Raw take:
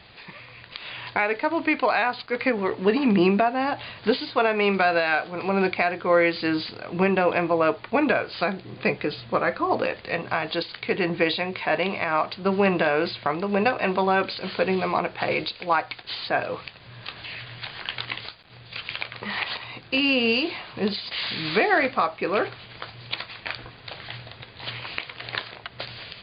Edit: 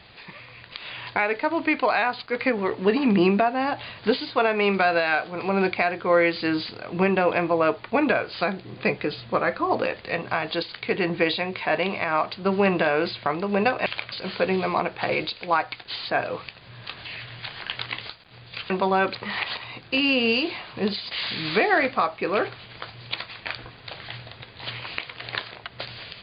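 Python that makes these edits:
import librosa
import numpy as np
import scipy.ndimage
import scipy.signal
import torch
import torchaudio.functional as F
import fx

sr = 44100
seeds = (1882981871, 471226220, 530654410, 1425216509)

y = fx.edit(x, sr, fx.swap(start_s=13.86, length_s=0.45, other_s=18.89, other_length_s=0.26), tone=tone)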